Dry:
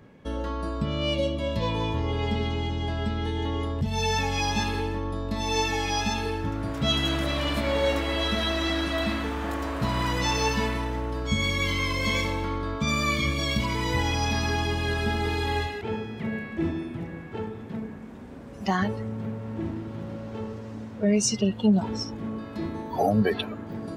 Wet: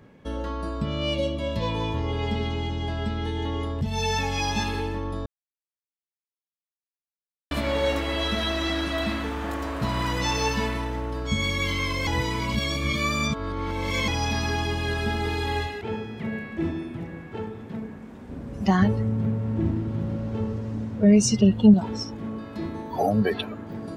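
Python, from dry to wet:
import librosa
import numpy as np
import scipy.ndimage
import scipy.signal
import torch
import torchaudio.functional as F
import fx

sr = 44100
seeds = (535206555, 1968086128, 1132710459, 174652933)

y = fx.low_shelf(x, sr, hz=270.0, db=11.0, at=(18.29, 21.74))
y = fx.edit(y, sr, fx.silence(start_s=5.26, length_s=2.25),
    fx.reverse_span(start_s=12.07, length_s=2.01), tone=tone)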